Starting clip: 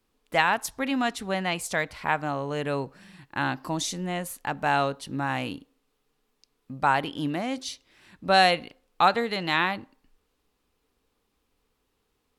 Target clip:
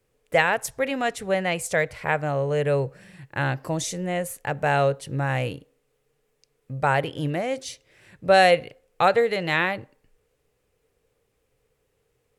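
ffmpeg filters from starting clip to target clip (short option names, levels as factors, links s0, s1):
-af "equalizer=f=125:t=o:w=1:g=12,equalizer=f=250:t=o:w=1:g=-9,equalizer=f=500:t=o:w=1:g=12,equalizer=f=1000:t=o:w=1:g=-6,equalizer=f=2000:t=o:w=1:g=5,equalizer=f=4000:t=o:w=1:g=-5,equalizer=f=8000:t=o:w=1:g=4"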